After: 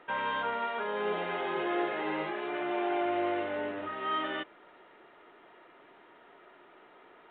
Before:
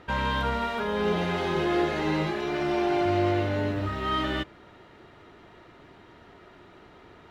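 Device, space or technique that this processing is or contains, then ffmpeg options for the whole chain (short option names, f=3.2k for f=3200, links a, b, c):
telephone: -af "highpass=400,lowpass=3.1k,volume=-3dB" -ar 8000 -c:a pcm_alaw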